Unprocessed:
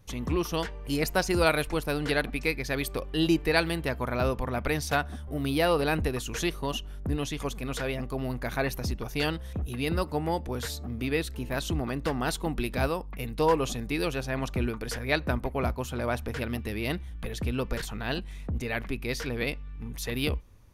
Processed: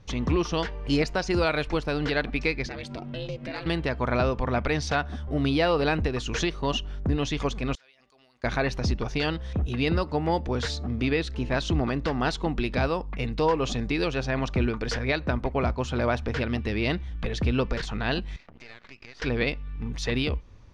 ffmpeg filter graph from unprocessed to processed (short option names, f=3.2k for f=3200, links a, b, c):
-filter_complex "[0:a]asettb=1/sr,asplit=3[a][b][c];[a]atrim=end=2.664[d];[b]atrim=start=2.66:end=3.66,asetpts=PTS-STARTPTS,afade=t=in:d=0.004:c=qsin,afade=t=out:st=0.996:d=0.004:c=qsin,acompressor=threshold=-34dB:ratio=5:attack=3.2:release=140:knee=1:detection=peak,asoftclip=type=hard:threshold=-28dB,aeval=exprs='val(0)*sin(2*PI*190*n/s)':c=same[e];[c]atrim=start=3.656[f];[d][e]acrossfade=d=0.004:c1=hsin:c2=qsin[g];[g][f]acrossfade=d=0.004:c1=qsin:c2=hsin,asettb=1/sr,asplit=3[h][i][j];[h]atrim=end=7.754[k];[i]atrim=start=7.75:end=8.44,asetpts=PTS-STARTPTS,afade=t=in:d=0.004:c=qsin,afade=t=out:st=0.686:d=0.004:c=qsin,aderivative,acompressor=threshold=-60dB:ratio=6:attack=3.2:release=140:knee=1:detection=peak[l];[j]atrim=start=8.436[m];[k][l]acrossfade=d=0.004:c1=hsin:c2=qsin[n];[n][m]acrossfade=d=0.004:c1=qsin:c2=hsin,asettb=1/sr,asplit=3[o][p][q];[o]atrim=end=18.364[r];[p]atrim=start=18.36:end=19.22,asetpts=PTS-STARTPTS,afade=t=in:d=0.004:c=qsin,afade=t=out:st=0.856:d=0.004:c=qsin,bandpass=f=1.8k:t=q:w=0.92,acompressor=threshold=-43dB:ratio=16:attack=3.2:release=140:knee=1:detection=peak,aeval=exprs='max(val(0),0)':c=same[s];[q]atrim=start=19.216[t];[r][s]acrossfade=d=0.004:c1=hsin:c2=qsin[u];[u][t]acrossfade=d=0.004:c1=qsin:c2=hsin,lowpass=f=5.9k:w=0.5412,lowpass=f=5.9k:w=1.3066,alimiter=limit=-19dB:level=0:latency=1:release=252,volume=5.5dB"